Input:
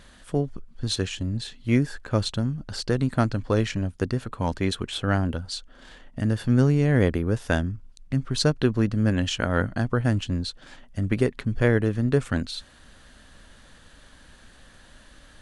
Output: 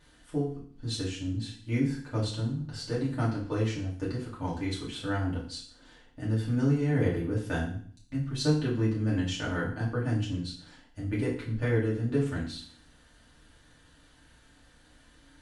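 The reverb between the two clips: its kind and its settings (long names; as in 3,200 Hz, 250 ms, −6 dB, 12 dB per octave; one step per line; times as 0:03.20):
feedback delay network reverb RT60 0.51 s, low-frequency decay 1.25×, high-frequency decay 1×, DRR −7 dB
level −15 dB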